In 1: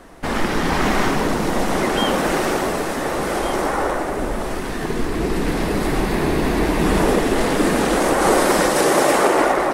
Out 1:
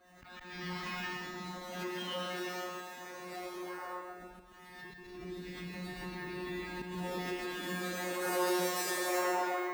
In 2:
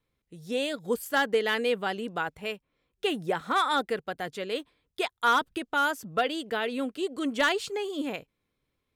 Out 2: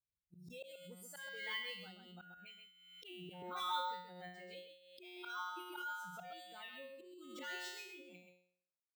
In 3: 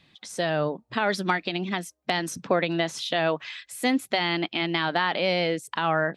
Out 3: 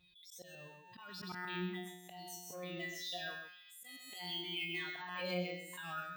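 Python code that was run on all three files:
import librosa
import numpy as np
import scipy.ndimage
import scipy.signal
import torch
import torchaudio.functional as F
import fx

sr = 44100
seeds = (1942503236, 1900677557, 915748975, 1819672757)

p1 = fx.bin_expand(x, sr, power=2.0)
p2 = np.clip(p1, -10.0 ** (-22.5 / 20.0), 10.0 ** (-22.5 / 20.0))
p3 = p1 + F.gain(torch.from_numpy(p2), -5.0).numpy()
p4 = scipy.signal.sosfilt(scipy.signal.bessel(2, 9500.0, 'lowpass', norm='mag', fs=sr, output='sos'), p3)
p5 = fx.comb_fb(p4, sr, f0_hz=180.0, decay_s=0.6, harmonics='all', damping=0.0, mix_pct=100)
p6 = 10.0 ** (-21.5 / 20.0) * np.tanh(p5 / 10.0 ** (-21.5 / 20.0))
p7 = fx.auto_swell(p6, sr, attack_ms=247.0)
p8 = scipy.signal.sosfilt(scipy.signal.butter(2, 41.0, 'highpass', fs=sr, output='sos'), p7)
p9 = fx.tilt_shelf(p8, sr, db=-4.0, hz=1400.0)
p10 = p9 + 10.0 ** (-6.0 / 20.0) * np.pad(p9, (int(131 * sr / 1000.0), 0))[:len(p9)]
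p11 = np.repeat(scipy.signal.resample_poly(p10, 1, 2), 2)[:len(p10)]
p12 = fx.pre_swell(p11, sr, db_per_s=46.0)
y = F.gain(torch.from_numpy(p12), 1.0).numpy()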